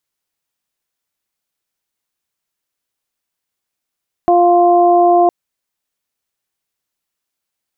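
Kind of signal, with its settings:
steady harmonic partials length 1.01 s, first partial 350 Hz, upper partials 3.5/−10 dB, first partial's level −12 dB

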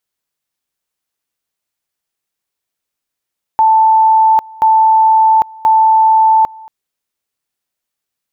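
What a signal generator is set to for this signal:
tone at two levels in turn 882 Hz −5.5 dBFS, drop 25 dB, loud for 0.80 s, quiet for 0.23 s, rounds 3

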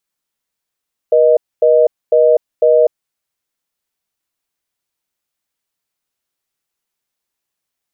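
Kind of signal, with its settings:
call progress tone reorder tone, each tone −9.5 dBFS 1.95 s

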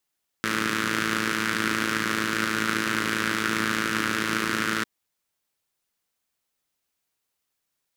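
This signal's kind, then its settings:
pulse-train model of a four-cylinder engine, steady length 4.40 s, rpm 3,300, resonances 210/300/1,400 Hz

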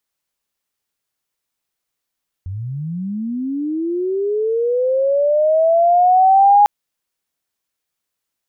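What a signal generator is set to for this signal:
glide linear 87 Hz → 830 Hz −23.5 dBFS → −6.5 dBFS 4.20 s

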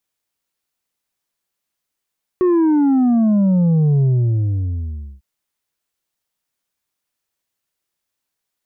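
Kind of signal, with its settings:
bass drop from 370 Hz, over 2.80 s, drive 4.5 dB, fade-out 1.18 s, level −12 dB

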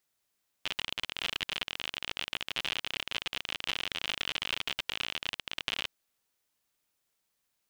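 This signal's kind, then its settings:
Geiger counter clicks 57 per second −16.5 dBFS 5.23 s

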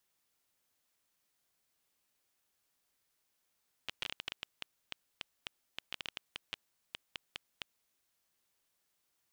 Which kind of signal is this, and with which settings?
Geiger counter clicks 8.2 per second −21 dBFS 3.86 s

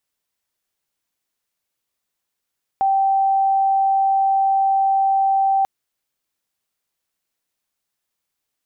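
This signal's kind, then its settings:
tone sine 779 Hz −14 dBFS 2.84 s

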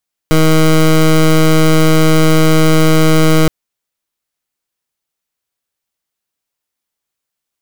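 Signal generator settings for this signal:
pulse wave 158 Hz, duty 18% −8 dBFS 3.17 s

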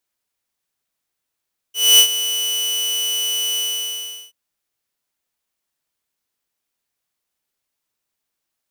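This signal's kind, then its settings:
note with an ADSR envelope saw 2,970 Hz, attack 247 ms, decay 83 ms, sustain −13 dB, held 1.84 s, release 740 ms −3.5 dBFS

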